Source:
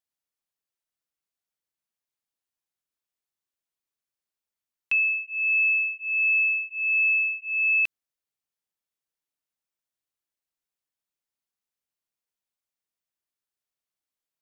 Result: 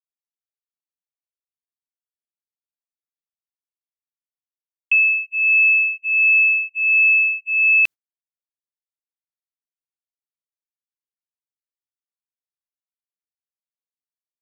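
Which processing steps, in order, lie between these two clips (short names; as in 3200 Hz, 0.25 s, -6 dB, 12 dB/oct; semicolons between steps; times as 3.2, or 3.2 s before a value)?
gate -34 dBFS, range -40 dB; gain +7.5 dB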